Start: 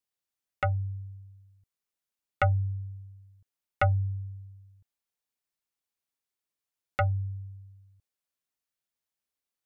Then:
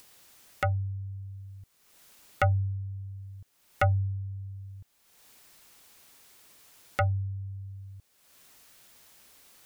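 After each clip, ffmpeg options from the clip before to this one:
-af "acompressor=mode=upward:threshold=-31dB:ratio=2.5"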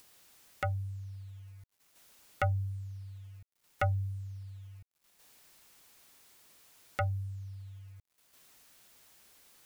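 -af "acrusher=bits=9:mix=0:aa=0.000001,volume=-5.5dB"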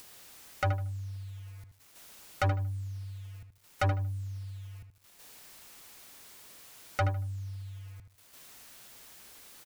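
-filter_complex "[0:a]asoftclip=type=tanh:threshold=-32dB,asplit=2[a][b];[b]adelay=77,lowpass=f=2.9k:p=1,volume=-8dB,asplit=2[c][d];[d]adelay=77,lowpass=f=2.9k:p=1,volume=0.25,asplit=2[e][f];[f]adelay=77,lowpass=f=2.9k:p=1,volume=0.25[g];[c][e][g]amix=inputs=3:normalize=0[h];[a][h]amix=inputs=2:normalize=0,volume=8.5dB"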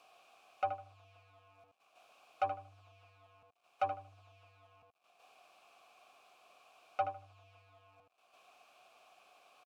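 -filter_complex "[0:a]acrusher=bits=8:mix=0:aa=0.000001,asplit=3[a][b][c];[a]bandpass=f=730:t=q:w=8,volume=0dB[d];[b]bandpass=f=1.09k:t=q:w=8,volume=-6dB[e];[c]bandpass=f=2.44k:t=q:w=8,volume=-9dB[f];[d][e][f]amix=inputs=3:normalize=0,volume=5dB"

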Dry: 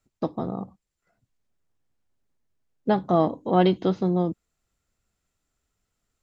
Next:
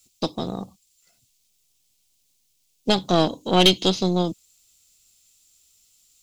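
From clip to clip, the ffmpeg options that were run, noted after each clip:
-af "aexciter=amount=13.7:drive=3:freq=2.5k,aeval=exprs='0.794*(cos(1*acos(clip(val(0)/0.794,-1,1)))-cos(1*PI/2))+0.0794*(cos(6*acos(clip(val(0)/0.794,-1,1)))-cos(6*PI/2))':c=same"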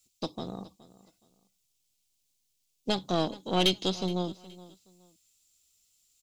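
-af "aecho=1:1:420|840:0.112|0.0292,volume=-9dB"

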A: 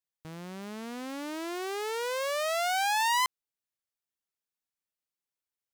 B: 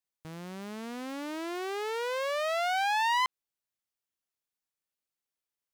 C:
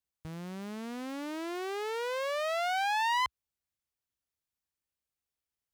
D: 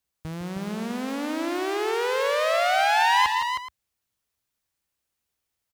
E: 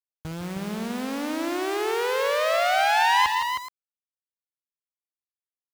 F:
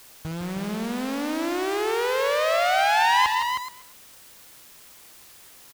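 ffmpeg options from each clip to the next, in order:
-filter_complex "[0:a]acrossover=split=4400[a][b];[b]acompressor=threshold=-45dB:ratio=4:attack=1:release=60[c];[a][c]amix=inputs=2:normalize=0"
-af "equalizer=f=66:w=0.76:g=14,volume=-2dB"
-af "aecho=1:1:63|158|168|314|425:0.119|0.335|0.251|0.447|0.141,volume=8dB"
-af "acrusher=bits=6:mix=0:aa=0.000001"
-af "aeval=exprs='val(0)+0.5*0.0141*sgn(val(0))':c=same,aecho=1:1:243:0.0708"

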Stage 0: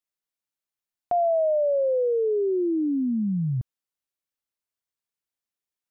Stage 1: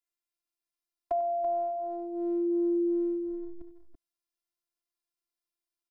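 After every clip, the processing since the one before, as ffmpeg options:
-filter_complex "[0:a]afftfilt=real='hypot(re,im)*cos(PI*b)':imag='0':win_size=512:overlap=0.75,acrossover=split=270|560[a][b][c];[a]acompressor=threshold=-43dB:ratio=4[d];[b]acompressor=threshold=-33dB:ratio=4[e];[c]acompressor=threshold=-34dB:ratio=4[f];[d][e][f]amix=inputs=3:normalize=0,aecho=1:1:78|95|334:0.141|0.178|0.398"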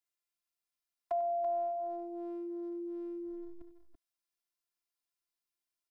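-filter_complex "[0:a]acrossover=split=700[a][b];[a]alimiter=level_in=8.5dB:limit=-24dB:level=0:latency=1,volume=-8.5dB[c];[b]acontrast=55[d];[c][d]amix=inputs=2:normalize=0,volume=-6.5dB"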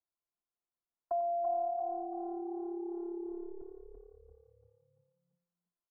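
-filter_complex "[0:a]lowpass=f=1.2k:w=0.5412,lowpass=f=1.2k:w=1.3066,asplit=6[a][b][c][d][e][f];[b]adelay=340,afreqshift=35,volume=-9dB[g];[c]adelay=680,afreqshift=70,volume=-15.9dB[h];[d]adelay=1020,afreqshift=105,volume=-22.9dB[i];[e]adelay=1360,afreqshift=140,volume=-29.8dB[j];[f]adelay=1700,afreqshift=175,volume=-36.7dB[k];[a][g][h][i][j][k]amix=inputs=6:normalize=0"

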